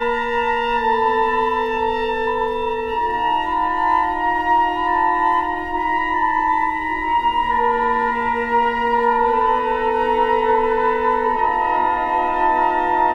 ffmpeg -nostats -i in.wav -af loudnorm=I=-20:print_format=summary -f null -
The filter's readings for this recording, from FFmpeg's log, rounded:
Input Integrated:    -18.2 LUFS
Input True Peak:      -6.0 dBTP
Input LRA:             1.7 LU
Input Threshold:     -28.2 LUFS